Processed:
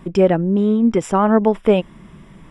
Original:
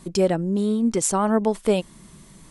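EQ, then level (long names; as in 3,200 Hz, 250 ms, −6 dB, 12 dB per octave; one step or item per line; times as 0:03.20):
Savitzky-Golay smoothing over 25 samples
+6.0 dB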